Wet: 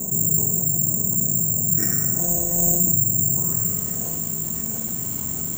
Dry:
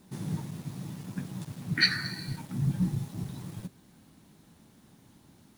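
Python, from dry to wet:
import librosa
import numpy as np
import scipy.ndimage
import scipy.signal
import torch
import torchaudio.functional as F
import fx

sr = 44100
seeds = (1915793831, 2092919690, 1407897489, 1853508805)

p1 = fx.sample_sort(x, sr, block=256, at=(2.19, 2.79))
p2 = fx.low_shelf(p1, sr, hz=280.0, db=6.0)
p3 = fx.filter_sweep_lowpass(p2, sr, from_hz=670.0, to_hz=6900.0, start_s=3.27, end_s=3.97, q=1.8)
p4 = fx.air_absorb(p3, sr, metres=92.0)
p5 = p4 + fx.echo_thinned(p4, sr, ms=691, feedback_pct=61, hz=420.0, wet_db=-21.0, dry=0)
p6 = fx.rev_fdn(p5, sr, rt60_s=1.1, lf_ratio=0.75, hf_ratio=0.9, size_ms=14.0, drr_db=-1.0)
p7 = (np.kron(scipy.signal.resample_poly(p6, 1, 6), np.eye(6)[0]) * 6)[:len(p6)]
p8 = fx.env_flatten(p7, sr, amount_pct=70)
y = p8 * 10.0 ** (-7.0 / 20.0)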